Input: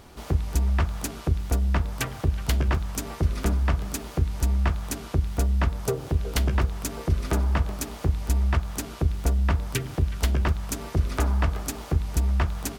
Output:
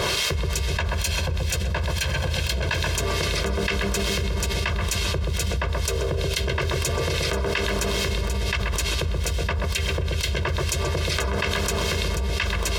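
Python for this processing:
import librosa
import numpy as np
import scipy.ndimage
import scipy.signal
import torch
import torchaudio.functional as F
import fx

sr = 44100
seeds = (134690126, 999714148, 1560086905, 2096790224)

y = fx.lower_of_two(x, sr, delay_ms=1.2, at=(0.72, 2.98))
y = fx.weighting(y, sr, curve='D')
y = fx.harmonic_tremolo(y, sr, hz=2.3, depth_pct=70, crossover_hz=1400.0)
y = y + 0.96 * np.pad(y, (int(1.9 * sr / 1000.0), 0))[:len(y)]
y = fx.echo_filtered(y, sr, ms=130, feedback_pct=82, hz=830.0, wet_db=-3.0)
y = fx.env_flatten(y, sr, amount_pct=100)
y = y * librosa.db_to_amplitude(-7.5)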